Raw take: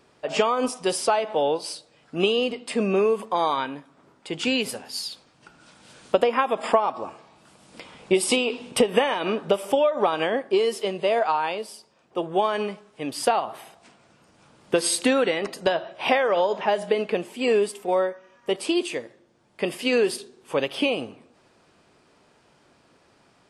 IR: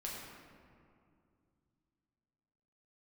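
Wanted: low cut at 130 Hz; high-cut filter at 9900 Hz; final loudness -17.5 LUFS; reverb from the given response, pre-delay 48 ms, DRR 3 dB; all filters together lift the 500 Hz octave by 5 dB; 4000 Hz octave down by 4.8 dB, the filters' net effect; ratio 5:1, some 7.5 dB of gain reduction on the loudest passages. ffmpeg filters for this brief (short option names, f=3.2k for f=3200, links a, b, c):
-filter_complex "[0:a]highpass=130,lowpass=9.9k,equalizer=f=500:t=o:g=6,equalizer=f=4k:t=o:g=-7.5,acompressor=threshold=-18dB:ratio=5,asplit=2[a][b];[1:a]atrim=start_sample=2205,adelay=48[c];[b][c]afir=irnorm=-1:irlink=0,volume=-3dB[d];[a][d]amix=inputs=2:normalize=0,volume=5.5dB"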